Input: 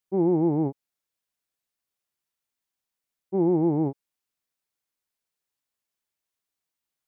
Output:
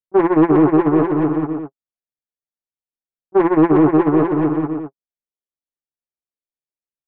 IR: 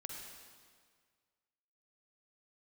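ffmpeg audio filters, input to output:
-filter_complex "[0:a]aeval=exprs='0.224*(cos(1*acos(clip(val(0)/0.224,-1,1)))-cos(1*PI/2))+0.0224*(cos(2*acos(clip(val(0)/0.224,-1,1)))-cos(2*PI/2))+0.0562*(cos(5*acos(clip(val(0)/0.224,-1,1)))-cos(5*PI/2))':channel_layout=same,asplit=2[link_01][link_02];[link_02]adelay=13,volume=-5.5dB[link_03];[link_01][link_03]amix=inputs=2:normalize=0,acompressor=mode=upward:threshold=-21dB:ratio=2.5,anlmdn=63.1,agate=range=-49dB:threshold=-16dB:ratio=16:detection=peak,asplit=2[link_04][link_05];[link_05]highpass=frequency=720:poles=1,volume=26dB,asoftclip=type=tanh:threshold=-7dB[link_06];[link_04][link_06]amix=inputs=2:normalize=0,lowpass=frequency=1100:poles=1,volume=-6dB,asplit=2[link_07][link_08];[link_08]aecho=0:1:360|612|788.4|911.9|998.3:0.631|0.398|0.251|0.158|0.1[link_09];[link_07][link_09]amix=inputs=2:normalize=0,alimiter=level_in=15.5dB:limit=-1dB:release=50:level=0:latency=1,volume=-5dB"

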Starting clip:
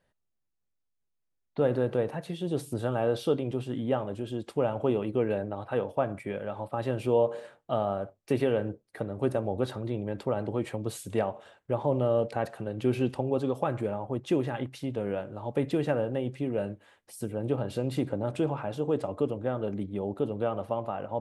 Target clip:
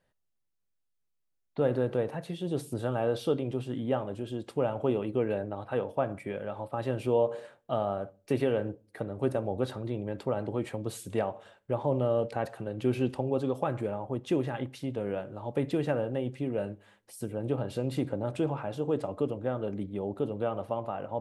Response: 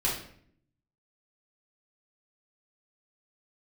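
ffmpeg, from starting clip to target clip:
-filter_complex "[0:a]asplit=2[link_01][link_02];[1:a]atrim=start_sample=2205,asetrate=61740,aresample=44100,adelay=6[link_03];[link_02][link_03]afir=irnorm=-1:irlink=0,volume=-27dB[link_04];[link_01][link_04]amix=inputs=2:normalize=0,volume=-1.5dB"

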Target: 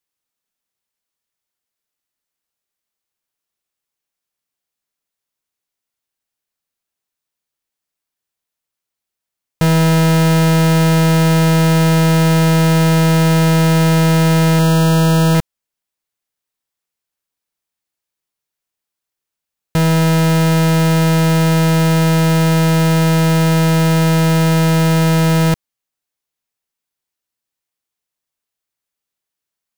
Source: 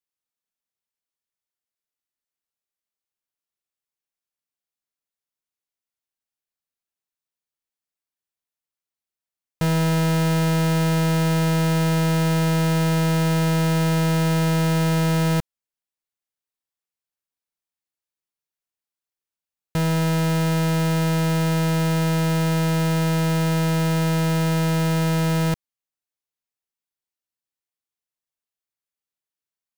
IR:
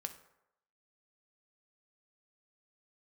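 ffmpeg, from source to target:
-filter_complex "[0:a]asettb=1/sr,asplit=3[link_01][link_02][link_03];[link_01]atrim=end=14.594[link_04];[link_02]atrim=start=14.59:end=15.35,asetpts=PTS-STARTPTS,afade=type=in:duration=0.004:curve=qsin,afade=type=out:start_time=0.756:duration=0.004:curve=qsin,asuperstop=centerf=2100:order=20:qfactor=3.3[link_05];[link_03]atrim=start=15.346[link_06];[link_04][link_05]acrossfade=duration=0.004:curve1=hsin:curve2=qsin[link_07];[link_07][link_06]acrossfade=duration=0.004:curve1=qsin:curve2=hsin,volume=8dB"

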